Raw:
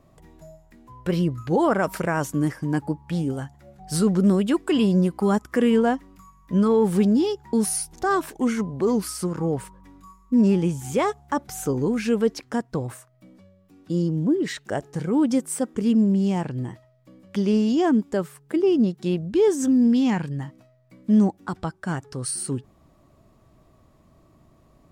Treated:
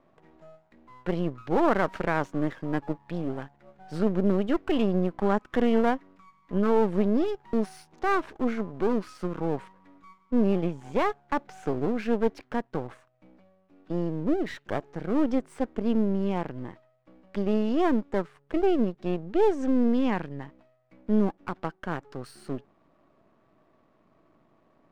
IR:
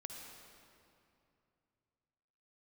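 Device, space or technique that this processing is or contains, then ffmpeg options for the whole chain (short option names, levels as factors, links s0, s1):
crystal radio: -af "highpass=220,lowpass=2600,aeval=exprs='if(lt(val(0),0),0.251*val(0),val(0))':c=same"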